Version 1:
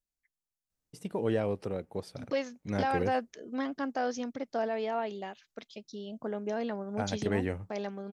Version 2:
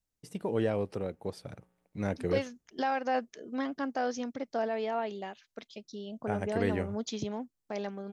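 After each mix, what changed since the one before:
first voice: entry -0.70 s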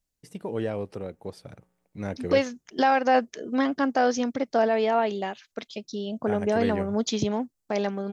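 second voice +9.5 dB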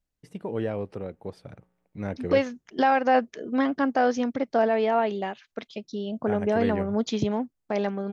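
master: add tone controls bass +1 dB, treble -9 dB

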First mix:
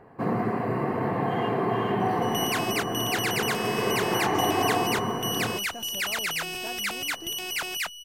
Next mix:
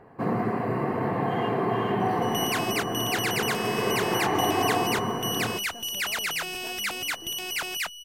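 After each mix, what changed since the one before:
speech -5.0 dB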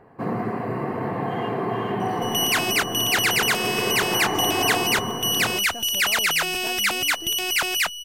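speech +8.0 dB; second sound +8.0 dB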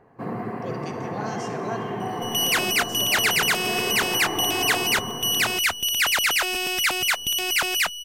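speech: entry -2.95 s; first sound -4.5 dB; reverb: on, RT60 1.9 s

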